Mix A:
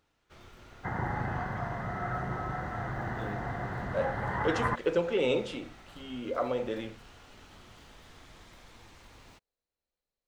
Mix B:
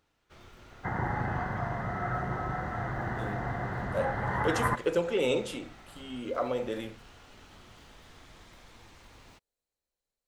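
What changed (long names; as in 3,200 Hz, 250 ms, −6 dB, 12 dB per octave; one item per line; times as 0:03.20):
speech: remove low-pass filter 4,900 Hz 12 dB per octave
reverb: on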